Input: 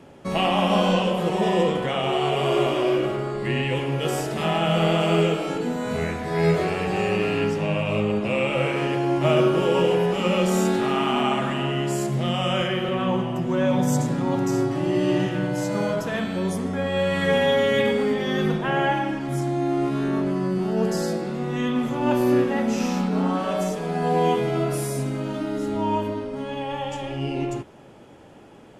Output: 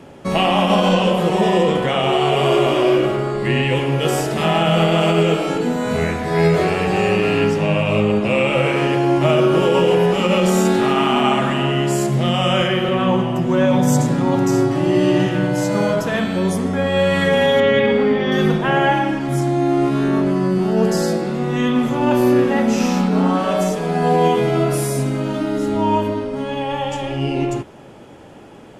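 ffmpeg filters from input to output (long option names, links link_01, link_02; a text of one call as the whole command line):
ffmpeg -i in.wav -filter_complex "[0:a]asettb=1/sr,asplit=3[link_01][link_02][link_03];[link_01]atrim=end=17.604[link_04];[link_02]atrim=start=17.6:end=18.32,asetpts=PTS-STARTPTS,afade=type=in:duration=0.004:curve=qsin,afade=type=out:start_time=0.716:duration=0.004:curve=qsin,lowpass=3400[link_05];[link_03]atrim=start=18.316[link_06];[link_04][link_05]acrossfade=duration=0.004:curve1=hsin:curve2=qsin[link_07];[link_07][link_06]acrossfade=duration=0.004:curve1=qsin:curve2=hsin,alimiter=level_in=11.5dB:limit=-1dB:release=50:level=0:latency=1,volume=-5dB" out.wav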